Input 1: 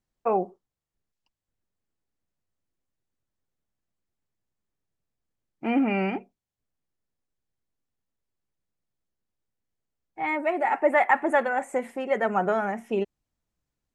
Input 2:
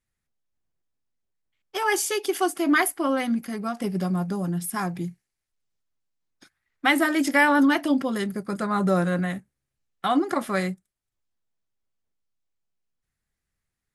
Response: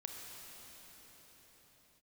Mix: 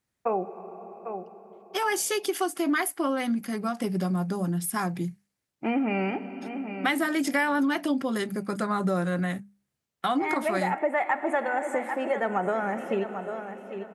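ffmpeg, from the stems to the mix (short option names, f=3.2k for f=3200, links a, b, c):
-filter_complex "[0:a]volume=-0.5dB,asplit=3[a][b][c];[b]volume=-6.5dB[d];[c]volume=-11dB[e];[1:a]bandreject=f=50:t=h:w=6,bandreject=f=100:t=h:w=6,bandreject=f=150:t=h:w=6,bandreject=f=200:t=h:w=6,volume=1dB[f];[2:a]atrim=start_sample=2205[g];[d][g]afir=irnorm=-1:irlink=0[h];[e]aecho=0:1:796|1592|2388|3184:1|0.24|0.0576|0.0138[i];[a][f][h][i]amix=inputs=4:normalize=0,highpass=81,acompressor=threshold=-24dB:ratio=3"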